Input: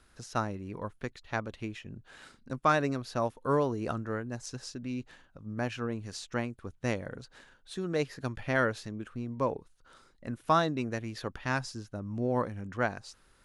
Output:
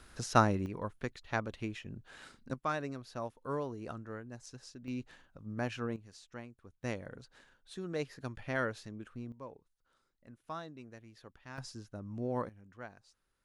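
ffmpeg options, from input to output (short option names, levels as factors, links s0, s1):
-af "asetnsamples=n=441:p=0,asendcmd='0.66 volume volume -1dB;2.54 volume volume -9.5dB;4.88 volume volume -3dB;5.96 volume volume -14dB;6.83 volume volume -6.5dB;9.32 volume volume -17.5dB;11.58 volume volume -6dB;12.49 volume volume -17.5dB',volume=2"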